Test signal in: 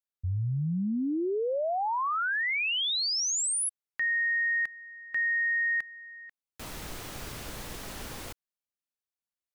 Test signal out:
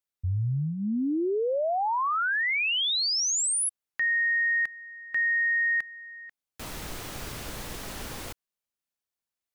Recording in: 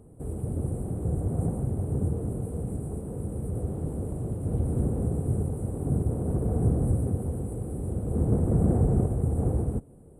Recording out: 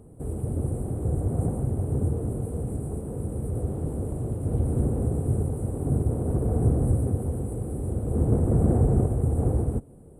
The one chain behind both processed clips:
dynamic equaliser 180 Hz, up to −7 dB, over −46 dBFS, Q 6.3
level +2.5 dB

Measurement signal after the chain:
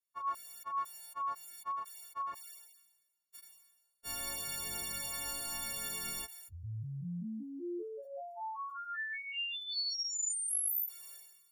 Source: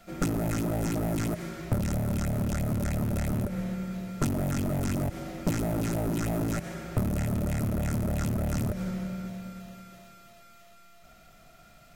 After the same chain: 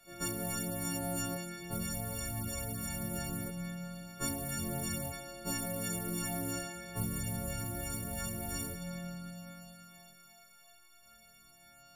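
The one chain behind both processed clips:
every partial snapped to a pitch grid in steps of 4 semitones
multi-voice chorus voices 2, 0.21 Hz, delay 25 ms, depth 3.6 ms
level that may fall only so fast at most 51 dB per second
level −7.5 dB

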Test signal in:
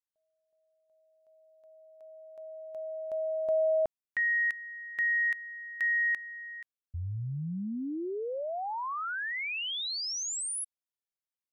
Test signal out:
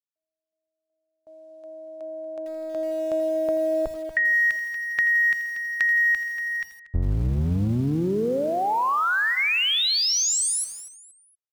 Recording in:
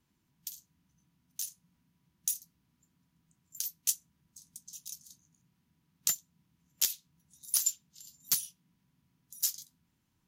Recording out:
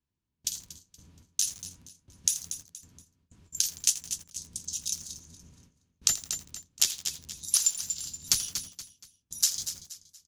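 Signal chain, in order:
sub-octave generator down 1 octave, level +3 dB
in parallel at +1 dB: speech leveller within 3 dB 0.5 s
on the sum: low-pass filter 7,400 Hz 12 dB per octave
notch filter 2,000 Hz, Q 23
noise gate with hold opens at −53 dBFS, closes at −63 dBFS, hold 98 ms, range −27 dB
high-shelf EQ 3,700 Hz +3.5 dB
on a send: repeating echo 236 ms, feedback 34%, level −15.5 dB
on the sum: dynamic equaliser 660 Hz, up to −5 dB, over −40 dBFS, Q 2.2
downward compressor 10 to 1, threshold −27 dBFS
feedback echo at a low word length 83 ms, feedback 55%, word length 7 bits, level −15 dB
level +7 dB

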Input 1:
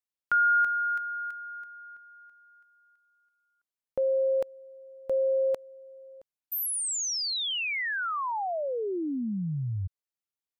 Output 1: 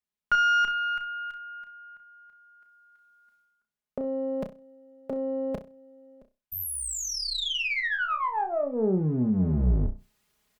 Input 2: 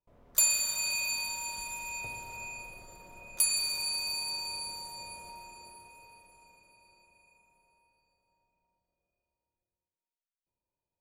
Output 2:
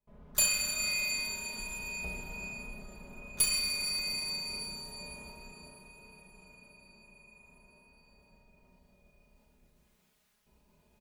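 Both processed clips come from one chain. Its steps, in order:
sub-octave generator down 1 octave, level +4 dB
comb filter 4.8 ms, depth 81%
reversed playback
upward compression, threshold −49 dBFS
reversed playback
harmonic generator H 2 −7 dB, 4 −13 dB, 7 −37 dB, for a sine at −10.5 dBFS
bass and treble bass +2 dB, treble −5 dB
on a send: flutter between parallel walls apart 5.5 metres, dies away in 0.26 s

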